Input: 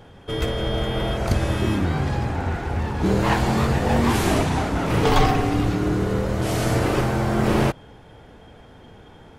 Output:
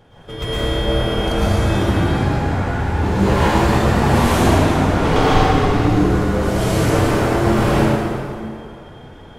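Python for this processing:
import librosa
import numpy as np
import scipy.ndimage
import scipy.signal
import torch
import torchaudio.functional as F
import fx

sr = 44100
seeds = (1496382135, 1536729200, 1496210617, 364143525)

y = fx.high_shelf(x, sr, hz=10000.0, db=-10.5, at=(4.28, 5.75))
y = fx.rev_plate(y, sr, seeds[0], rt60_s=2.4, hf_ratio=0.7, predelay_ms=95, drr_db=-9.5)
y = y * librosa.db_to_amplitude(-4.5)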